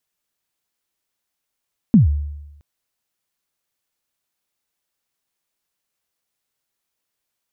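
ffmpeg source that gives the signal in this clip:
-f lavfi -i "aevalsrc='0.562*pow(10,-3*t/0.98)*sin(2*PI*(250*0.132/log(73/250)*(exp(log(73/250)*min(t,0.132)/0.132)-1)+73*max(t-0.132,0)))':d=0.67:s=44100"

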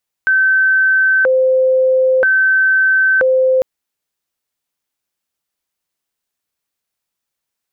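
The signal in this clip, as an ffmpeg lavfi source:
-f lavfi -i "aevalsrc='0.355*sin(2*PI*(1029.5*t+510.5/0.51*(0.5-abs(mod(0.51*t,1)-0.5))))':d=3.35:s=44100"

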